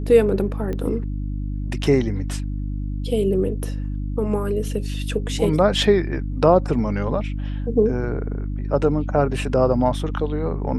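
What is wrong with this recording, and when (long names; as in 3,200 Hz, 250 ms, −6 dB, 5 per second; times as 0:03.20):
mains hum 50 Hz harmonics 6 −26 dBFS
0:00.73: click −17 dBFS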